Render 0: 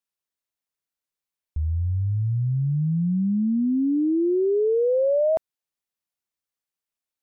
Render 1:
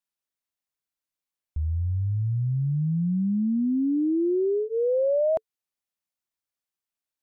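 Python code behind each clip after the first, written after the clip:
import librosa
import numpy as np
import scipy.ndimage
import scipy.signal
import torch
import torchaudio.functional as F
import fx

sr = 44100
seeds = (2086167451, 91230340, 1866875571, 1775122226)

y = fx.notch(x, sr, hz=440.0, q=13.0)
y = F.gain(torch.from_numpy(y), -2.0).numpy()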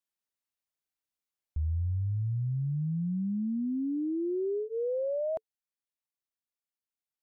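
y = fx.rider(x, sr, range_db=10, speed_s=0.5)
y = F.gain(torch.from_numpy(y), -6.5).numpy()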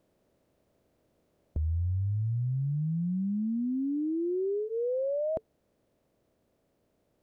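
y = fx.bin_compress(x, sr, power=0.6)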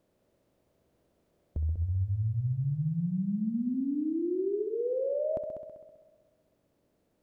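y = fx.echo_heads(x, sr, ms=65, heads='all three', feedback_pct=52, wet_db=-12.0)
y = F.gain(torch.from_numpy(y), -1.5).numpy()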